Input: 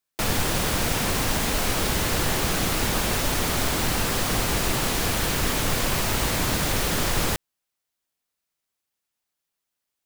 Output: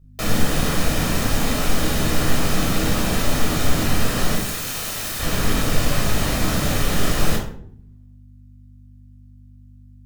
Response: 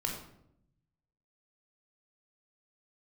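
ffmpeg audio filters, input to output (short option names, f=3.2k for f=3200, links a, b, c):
-filter_complex "[0:a]asettb=1/sr,asplit=3[a][b][c];[a]atrim=end=4.354[d];[b]atrim=start=4.35:end=5.2,asetpts=PTS-STARTPTS,afade=t=in:d=0.004:c=qsin,afade=t=out:st=0.846:d=0.004:c=qsin,aeval=exprs='(mod(14.1*val(0)+1,2)-1)/14.1':c=same[e];[c]atrim=start=5.196[f];[d][e]acrossfade=d=0.004:c1=hsin:c2=qsin[g];[g][f]acrossfade=d=0.004:c1=qsin:c2=hsin,aeval=exprs='val(0)+0.00316*(sin(2*PI*50*n/s)+sin(2*PI*2*50*n/s)/2+sin(2*PI*3*50*n/s)/3+sin(2*PI*4*50*n/s)/4+sin(2*PI*5*50*n/s)/5)':c=same[h];[1:a]atrim=start_sample=2205,asetrate=57330,aresample=44100[i];[h][i]afir=irnorm=-1:irlink=0"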